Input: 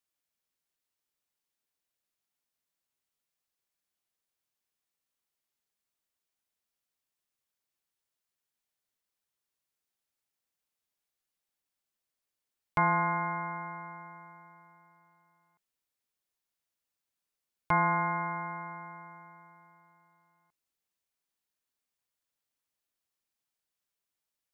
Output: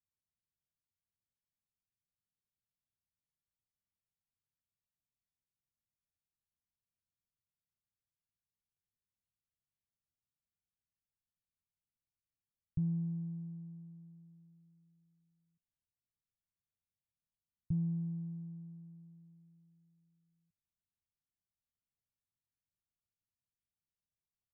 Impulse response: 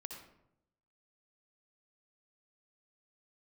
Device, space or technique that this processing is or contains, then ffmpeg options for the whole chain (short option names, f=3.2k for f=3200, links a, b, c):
the neighbour's flat through the wall: -af "lowpass=f=200:w=0.5412,lowpass=f=200:w=1.3066,equalizer=f=94:t=o:w=0.77:g=5,volume=1.5dB"